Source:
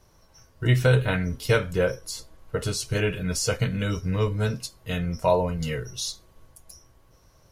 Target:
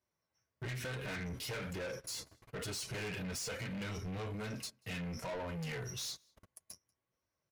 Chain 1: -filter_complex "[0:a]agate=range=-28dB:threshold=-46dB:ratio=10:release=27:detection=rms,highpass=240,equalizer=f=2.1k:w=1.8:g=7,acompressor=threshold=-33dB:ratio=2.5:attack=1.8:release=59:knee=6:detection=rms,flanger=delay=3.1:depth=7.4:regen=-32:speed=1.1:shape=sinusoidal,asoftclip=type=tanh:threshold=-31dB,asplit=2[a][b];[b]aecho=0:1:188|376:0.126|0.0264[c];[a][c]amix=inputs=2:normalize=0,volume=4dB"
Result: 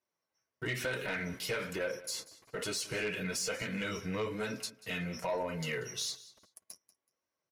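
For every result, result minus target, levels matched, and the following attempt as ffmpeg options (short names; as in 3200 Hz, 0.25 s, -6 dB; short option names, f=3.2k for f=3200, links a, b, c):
echo-to-direct +11.5 dB; soft clip: distortion -10 dB; 125 Hz band -6.0 dB
-filter_complex "[0:a]agate=range=-28dB:threshold=-46dB:ratio=10:release=27:detection=rms,highpass=240,equalizer=f=2.1k:w=1.8:g=7,acompressor=threshold=-33dB:ratio=2.5:attack=1.8:release=59:knee=6:detection=rms,flanger=delay=3.1:depth=7.4:regen=-32:speed=1.1:shape=sinusoidal,asoftclip=type=tanh:threshold=-31dB,asplit=2[a][b];[b]aecho=0:1:188:0.0335[c];[a][c]amix=inputs=2:normalize=0,volume=4dB"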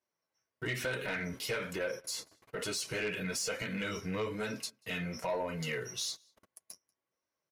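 soft clip: distortion -10 dB; 125 Hz band -5.5 dB
-filter_complex "[0:a]agate=range=-28dB:threshold=-46dB:ratio=10:release=27:detection=rms,highpass=240,equalizer=f=2.1k:w=1.8:g=7,acompressor=threshold=-33dB:ratio=2.5:attack=1.8:release=59:knee=6:detection=rms,flanger=delay=3.1:depth=7.4:regen=-32:speed=1.1:shape=sinusoidal,asoftclip=type=tanh:threshold=-42dB,asplit=2[a][b];[b]aecho=0:1:188:0.0335[c];[a][c]amix=inputs=2:normalize=0,volume=4dB"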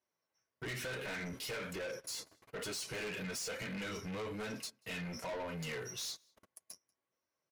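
125 Hz band -5.5 dB
-filter_complex "[0:a]agate=range=-28dB:threshold=-46dB:ratio=10:release=27:detection=rms,highpass=100,equalizer=f=2.1k:w=1.8:g=7,acompressor=threshold=-33dB:ratio=2.5:attack=1.8:release=59:knee=6:detection=rms,flanger=delay=3.1:depth=7.4:regen=-32:speed=1.1:shape=sinusoidal,asoftclip=type=tanh:threshold=-42dB,asplit=2[a][b];[b]aecho=0:1:188:0.0335[c];[a][c]amix=inputs=2:normalize=0,volume=4dB"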